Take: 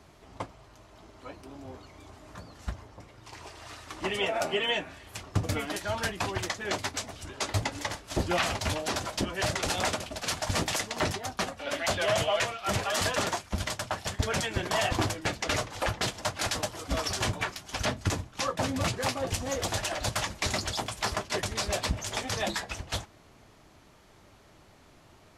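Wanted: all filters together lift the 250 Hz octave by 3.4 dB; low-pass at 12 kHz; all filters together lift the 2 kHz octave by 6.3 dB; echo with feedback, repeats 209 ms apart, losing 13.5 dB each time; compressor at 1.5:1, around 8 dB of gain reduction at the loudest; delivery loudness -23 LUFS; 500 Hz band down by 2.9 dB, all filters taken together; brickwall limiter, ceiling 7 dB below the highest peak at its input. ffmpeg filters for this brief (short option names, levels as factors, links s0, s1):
-af "lowpass=12000,equalizer=f=250:t=o:g=6,equalizer=f=500:t=o:g=-6,equalizer=f=2000:t=o:g=8,acompressor=threshold=0.00562:ratio=1.5,alimiter=level_in=1.19:limit=0.0631:level=0:latency=1,volume=0.841,aecho=1:1:209|418:0.211|0.0444,volume=5.01"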